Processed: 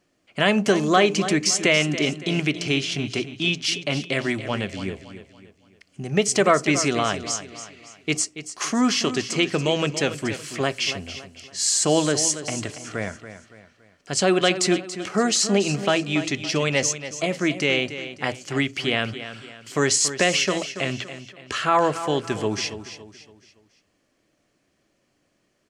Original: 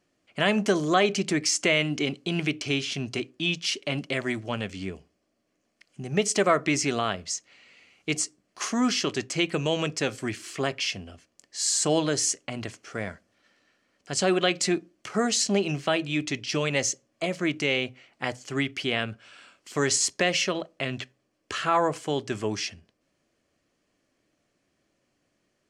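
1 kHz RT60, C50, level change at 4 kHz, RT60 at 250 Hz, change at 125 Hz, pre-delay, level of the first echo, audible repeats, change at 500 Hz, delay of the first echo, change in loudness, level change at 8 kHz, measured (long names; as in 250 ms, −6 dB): no reverb audible, no reverb audible, +4.5 dB, no reverb audible, +4.5 dB, no reverb audible, −12.0 dB, 3, +4.5 dB, 282 ms, +4.0 dB, +4.5 dB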